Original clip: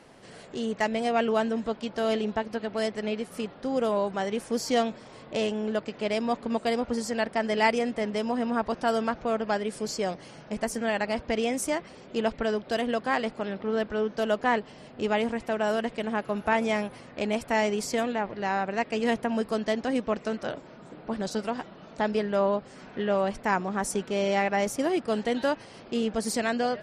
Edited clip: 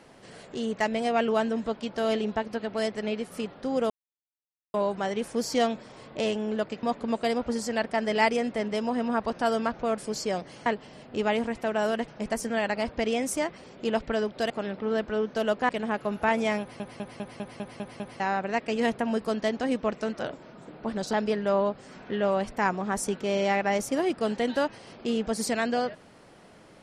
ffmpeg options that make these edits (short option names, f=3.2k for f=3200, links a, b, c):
-filter_complex "[0:a]asplit=17[a][b][c][d][e][f][g][h][i][j][k][l][m][n][o][p][q];[a]atrim=end=3.9,asetpts=PTS-STARTPTS,afade=t=out:st=3.896:d=0.004:c=hsin,apad=pad_dur=0.84[r];[b]atrim=start=3.9:end=5.992,asetpts=PTS-STARTPTS,afade=t=in:d=0.004:c=hsin[s];[c]atrim=start=6.248:end=9.402[t];[d]atrim=start=9.708:end=10.392[u];[e]atrim=start=14.508:end=15.932[v];[f]atrim=start=10.388:end=12.812[w];[g]atrim=start=13.318:end=14.512[x];[h]atrim=start=15.928:end=17.042[y];[i]atrim=start=16.838:end=17.042[z];[j]atrim=start=16.838:end=17.042[aa];[k]atrim=start=16.838:end=17.042[ab];[l]atrim=start=16.838:end=17.042[ac];[m]atrim=start=16.838:end=17.042[ad];[n]atrim=start=16.838:end=17.042[ae];[o]atrim=start=16.838:end=17.042[af];[p]atrim=start=18.438:end=21.372[ag];[q]atrim=start=21.998[ah];[r][s]concat=n=2:v=0:a=1[ai];[ai][t]acrossfade=d=0.004:c1=hsin:c2=hsin[aj];[aj][u]acrossfade=d=0.004:c1=hsin:c2=hsin[ak];[ak][v]acrossfade=d=0.004:c1=hsin:c2=hsin[al];[al][w]acrossfade=d=0.004:c1=hsin:c2=hsin[am];[am][x]acrossfade=d=0.004:c1=hsin:c2=hsin[an];[an][y]acrossfade=d=0.004:c1=hsin:c2=hsin[ao];[ao][z]acrossfade=d=0.004:c1=hsin:c2=hsin[ap];[ap][aa]acrossfade=d=0.004:c1=hsin:c2=hsin[aq];[aq][ab]acrossfade=d=0.004:c1=hsin:c2=hsin[ar];[ar][ac]acrossfade=d=0.004:c1=hsin:c2=hsin[as];[as][ad]acrossfade=d=0.004:c1=hsin:c2=hsin[at];[at][ae]acrossfade=d=0.004:c1=hsin:c2=hsin[au];[au][af]acrossfade=d=0.004:c1=hsin:c2=hsin[av];[av][ag]acrossfade=d=0.004:c1=hsin:c2=hsin[aw];[aw][ah]acrossfade=d=0.004:c1=hsin:c2=hsin"